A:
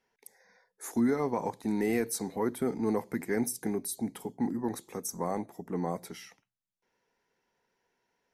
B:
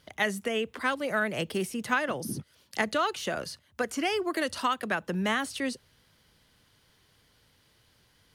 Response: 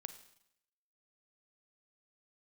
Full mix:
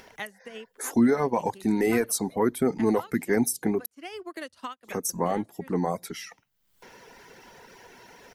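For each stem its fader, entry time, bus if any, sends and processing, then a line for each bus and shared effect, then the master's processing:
-2.5 dB, 0.00 s, muted 3.86–4.84, no send, reverb removal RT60 0.72 s; AGC gain up to 9.5 dB
-2.0 dB, 0.00 s, no send, upward expander 2.5:1, over -43 dBFS; auto duck -10 dB, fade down 0.40 s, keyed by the first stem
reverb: off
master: upward compressor, threshold -31 dBFS

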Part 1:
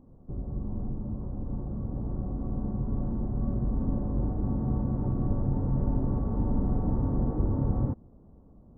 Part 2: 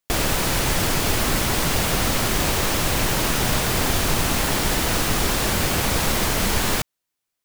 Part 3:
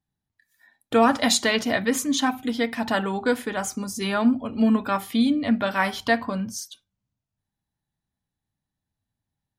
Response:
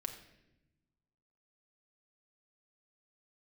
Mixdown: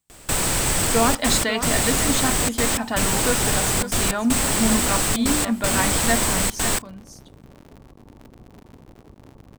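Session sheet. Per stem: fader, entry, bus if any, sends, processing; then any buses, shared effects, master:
-8.5 dB, 1.70 s, no send, echo send -19.5 dB, cycle switcher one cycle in 2, muted; low shelf 140 Hz -8.5 dB; compressor, threshold -33 dBFS, peak gain reduction 7.5 dB
-1.5 dB, 0.00 s, no send, no echo send, bell 8100 Hz +14.5 dB 0.24 oct; step gate "x..xxxxxxxxx.x" 157 bpm -24 dB
-2.0 dB, 0.00 s, no send, echo send -10.5 dB, dry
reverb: off
echo: echo 0.544 s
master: dry

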